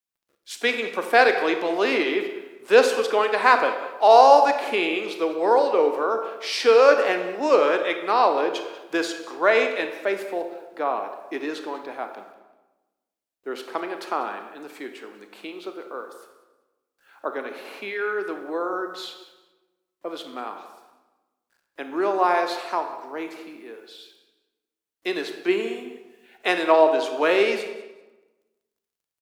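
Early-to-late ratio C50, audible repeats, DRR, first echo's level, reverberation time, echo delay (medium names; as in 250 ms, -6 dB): 7.5 dB, 2, 6.0 dB, -17.5 dB, 1.1 s, 193 ms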